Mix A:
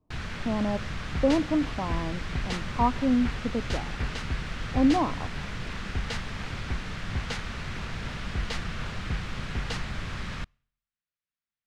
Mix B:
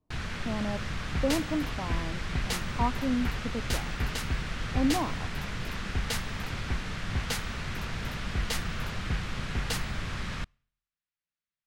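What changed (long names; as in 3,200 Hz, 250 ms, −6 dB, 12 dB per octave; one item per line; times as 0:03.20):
speech −5.5 dB
first sound: add high-frequency loss of the air 74 metres
master: remove high-frequency loss of the air 100 metres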